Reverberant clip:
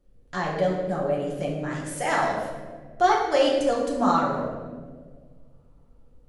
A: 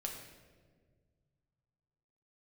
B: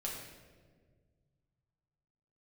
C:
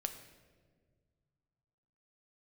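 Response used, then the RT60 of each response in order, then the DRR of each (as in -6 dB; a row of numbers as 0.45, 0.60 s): B; 1.6, 1.6, 1.7 s; 0.0, -4.0, 6.5 dB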